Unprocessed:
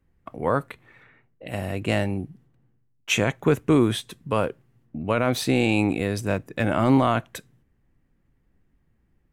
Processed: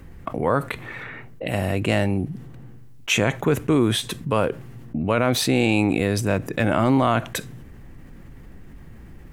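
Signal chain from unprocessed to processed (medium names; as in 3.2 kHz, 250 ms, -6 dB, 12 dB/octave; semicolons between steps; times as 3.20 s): level flattener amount 50%; trim -1 dB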